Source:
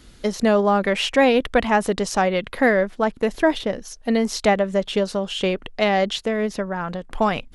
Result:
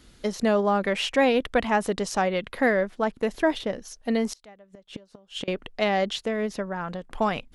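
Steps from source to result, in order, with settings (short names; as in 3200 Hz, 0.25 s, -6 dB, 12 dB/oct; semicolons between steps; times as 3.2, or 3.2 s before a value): low shelf 64 Hz -3.5 dB; 4.32–5.48 flipped gate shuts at -17 dBFS, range -27 dB; gain -4.5 dB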